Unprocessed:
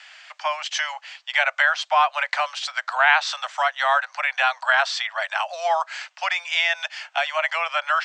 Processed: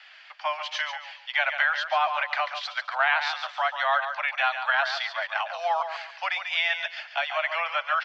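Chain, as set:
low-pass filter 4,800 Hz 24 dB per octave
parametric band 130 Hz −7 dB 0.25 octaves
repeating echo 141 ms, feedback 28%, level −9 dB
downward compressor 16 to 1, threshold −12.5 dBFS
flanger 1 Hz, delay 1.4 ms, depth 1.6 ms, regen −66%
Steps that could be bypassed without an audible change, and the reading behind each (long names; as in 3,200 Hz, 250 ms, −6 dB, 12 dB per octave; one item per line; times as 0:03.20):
parametric band 130 Hz: nothing at its input below 480 Hz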